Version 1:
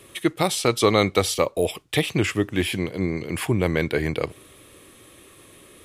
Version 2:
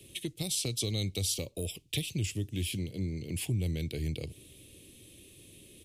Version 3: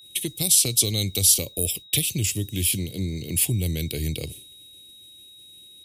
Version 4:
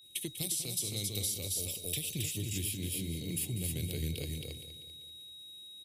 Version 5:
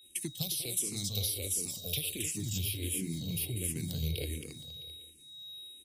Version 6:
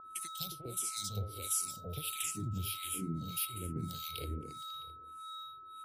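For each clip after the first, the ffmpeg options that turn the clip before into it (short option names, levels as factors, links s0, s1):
-filter_complex "[0:a]firequalizer=gain_entry='entry(140,0);entry(1200,-29);entry(2600,-3)':delay=0.05:min_phase=1,acrossover=split=110|4100[s0][s1][s2];[s1]acompressor=threshold=0.0178:ratio=5[s3];[s0][s3][s2]amix=inputs=3:normalize=0,volume=0.891"
-af "agate=range=0.0224:threshold=0.00708:ratio=3:detection=peak,aeval=exprs='val(0)+0.00158*sin(2*PI*3800*n/s)':c=same,aemphasis=mode=production:type=50fm,volume=2.11"
-filter_complex "[0:a]asplit=2[s0][s1];[s1]aecho=0:1:270:0.596[s2];[s0][s2]amix=inputs=2:normalize=0,acompressor=threshold=0.0708:ratio=6,asplit=2[s3][s4];[s4]aecho=0:1:195|390|585|780|975:0.266|0.125|0.0588|0.0276|0.013[s5];[s3][s5]amix=inputs=2:normalize=0,volume=0.355"
-filter_complex "[0:a]asplit=2[s0][s1];[s1]afreqshift=-1.4[s2];[s0][s2]amix=inputs=2:normalize=1,volume=1.58"
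-filter_complex "[0:a]aeval=exprs='val(0)+0.01*sin(2*PI*1300*n/s)':c=same,acrossover=split=1100[s0][s1];[s0]aeval=exprs='val(0)*(1-1/2+1/2*cos(2*PI*1.6*n/s))':c=same[s2];[s1]aeval=exprs='val(0)*(1-1/2-1/2*cos(2*PI*1.6*n/s))':c=same[s3];[s2][s3]amix=inputs=2:normalize=0"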